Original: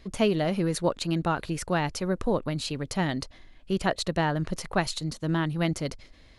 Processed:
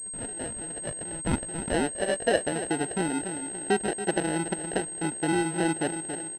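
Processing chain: trilling pitch shifter +1 st, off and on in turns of 0.28 s; buzz 60 Hz, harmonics 11, -56 dBFS 0 dB/oct; AGC gain up to 12.5 dB; feedback echo 0.278 s, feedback 25%, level -14 dB; treble ducked by the level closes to 2500 Hz, closed at -13 dBFS; compressor 2:1, threshold -31 dBFS, peak gain reduction 12 dB; band-pass sweep 1900 Hz -> 370 Hz, 0.86–2.7; sample-and-hold 38×; pulse-width modulation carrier 8400 Hz; gain +6 dB

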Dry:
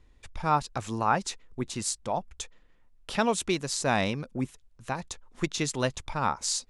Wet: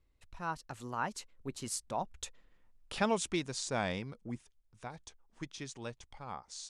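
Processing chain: Doppler pass-by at 2.6, 30 m/s, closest 26 m; gain -4 dB

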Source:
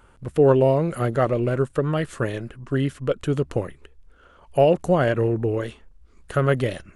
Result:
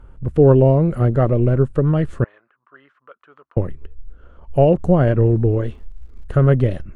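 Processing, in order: 5.25–6.53 crackle 130/s -42 dBFS; tilt -3.5 dB/oct; 2.24–3.57 ladder band-pass 1400 Hz, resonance 50%; gain -1 dB

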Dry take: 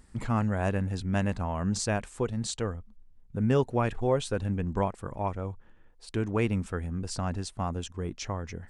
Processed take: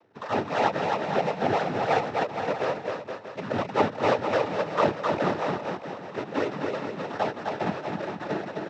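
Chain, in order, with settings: HPF 310 Hz 6 dB/oct; band shelf 780 Hz +10.5 dB 1.3 oct; comb 6.2 ms, depth 48%; decimation with a swept rate 31×, swing 100% 2.9 Hz; overdrive pedal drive 14 dB, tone 1100 Hz, clips at -7.5 dBFS; noise vocoder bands 12; LPF 6200 Hz 24 dB/oct; bouncing-ball echo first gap 0.26 s, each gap 0.8×, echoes 5; ending taper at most 230 dB/s; gain -2 dB

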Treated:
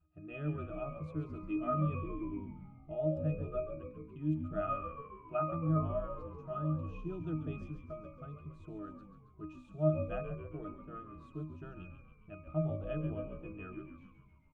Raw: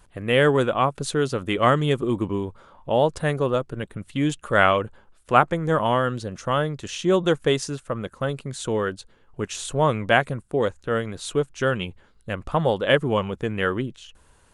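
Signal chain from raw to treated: octave resonator D#, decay 0.38 s; frequency-shifting echo 0.138 s, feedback 63%, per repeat -60 Hz, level -9 dB; gain -1 dB

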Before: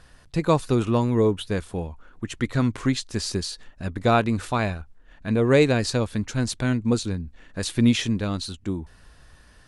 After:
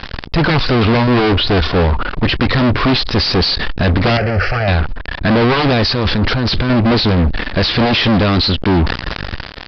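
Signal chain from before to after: one-sided fold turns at -19.5 dBFS; 1.07–1.75 comb 2.8 ms, depth 58%; 5.83–6.7 negative-ratio compressor -37 dBFS, ratio -1; fuzz box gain 40 dB, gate -47 dBFS; downsampling 11025 Hz; 4.17–4.68 fixed phaser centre 1000 Hz, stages 6; maximiser +16.5 dB; sustainer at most 85 dB/s; gain -8 dB

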